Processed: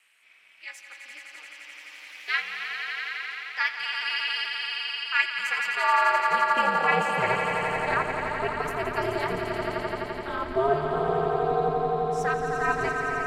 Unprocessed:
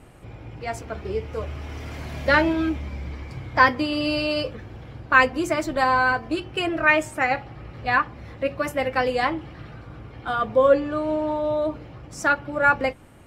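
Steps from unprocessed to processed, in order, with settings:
high-pass filter sweep 2,300 Hz → 89 Hz, 0:05.16–0:08.37
echo that builds up and dies away 86 ms, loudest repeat 5, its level −8 dB
ring modulation 140 Hz
level −4.5 dB

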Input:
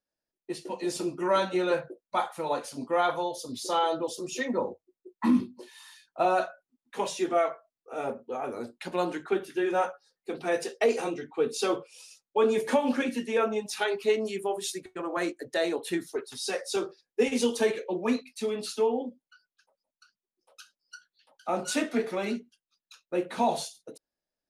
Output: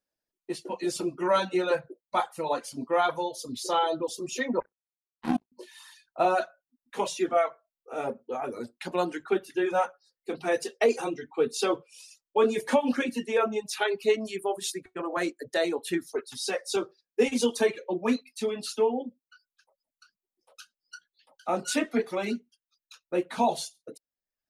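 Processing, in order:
0:04.60–0:05.52: power curve on the samples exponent 3
reverb reduction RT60 0.68 s
level +1.5 dB

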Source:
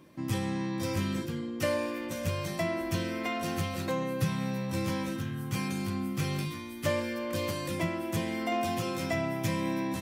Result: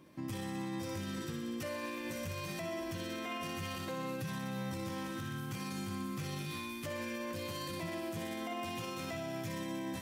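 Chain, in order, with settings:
feedback echo with a high-pass in the loop 61 ms, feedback 78%, high-pass 850 Hz, level −4.5 dB
brickwall limiter −28 dBFS, peak gain reduction 11.5 dB
level −3.5 dB

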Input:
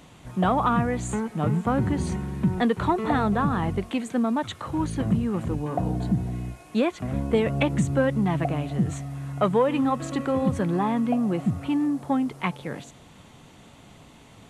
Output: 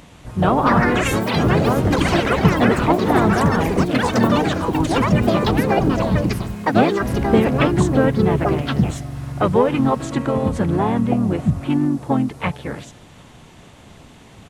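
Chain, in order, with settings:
delay with pitch and tempo change per echo 383 ms, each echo +7 semitones, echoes 3
pitch-shifted copies added −12 semitones −6 dB, −3 semitones −5 dB, +3 semitones −14 dB
level +3.5 dB

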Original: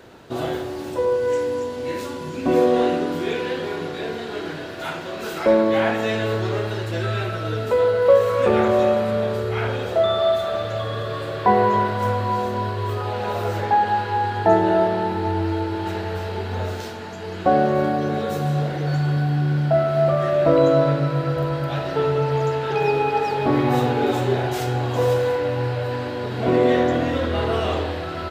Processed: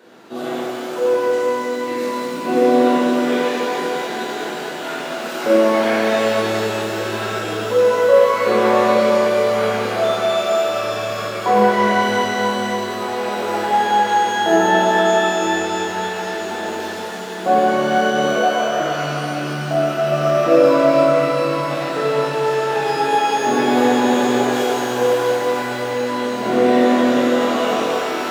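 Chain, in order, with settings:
0:18.31–0:18.81: three sine waves on the formant tracks
high-pass filter 190 Hz 24 dB per octave
reverb with rising layers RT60 3 s, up +12 semitones, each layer −8 dB, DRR −7.5 dB
level −4.5 dB

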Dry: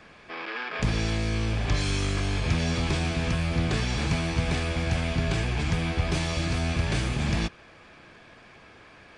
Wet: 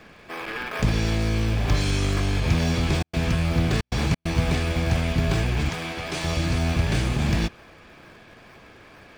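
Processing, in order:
0:03.00–0:04.29: gate pattern "x.x.xxxxxx.x" 134 BPM −60 dB
0:05.69–0:06.24: high-pass filter 570 Hz 6 dB per octave
in parallel at −9 dB: sample-and-hold swept by an LFO 24×, swing 100% 2.2 Hz
on the sum: level +1.5 dB

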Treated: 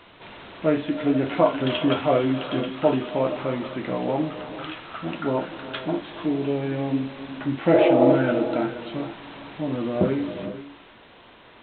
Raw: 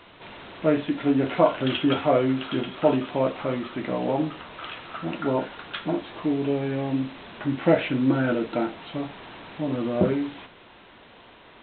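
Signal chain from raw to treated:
healed spectral selection 0:07.76–0:08.12, 320–1,300 Hz before
reverb whose tail is shaped and stops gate 500 ms rising, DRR 10.5 dB

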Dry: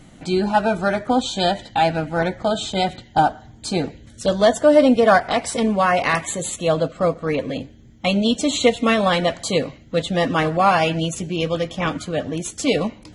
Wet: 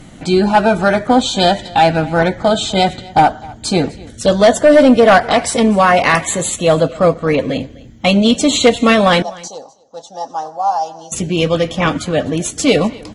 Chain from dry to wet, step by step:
sine wavefolder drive 5 dB, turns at −1.5 dBFS
0:09.22–0:11.12: pair of resonant band-passes 2,200 Hz, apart 2.8 octaves
single-tap delay 252 ms −22 dB
level −1 dB

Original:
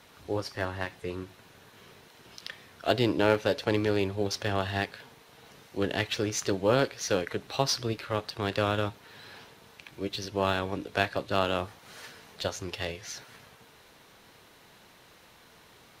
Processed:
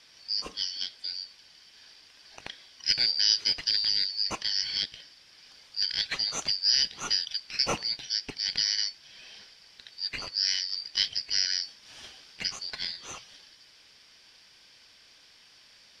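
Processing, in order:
band-splitting scrambler in four parts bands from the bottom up 4321
low-pass filter 7,600 Hz 12 dB per octave

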